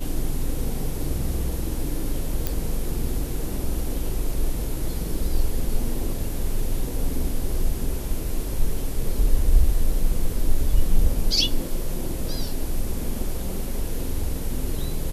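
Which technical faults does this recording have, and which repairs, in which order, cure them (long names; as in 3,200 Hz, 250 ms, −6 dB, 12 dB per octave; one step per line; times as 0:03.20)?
0:02.47: click −9 dBFS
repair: click removal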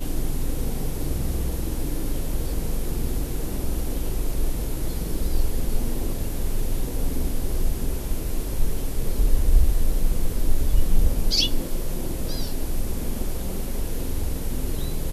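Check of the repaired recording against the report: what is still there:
none of them is left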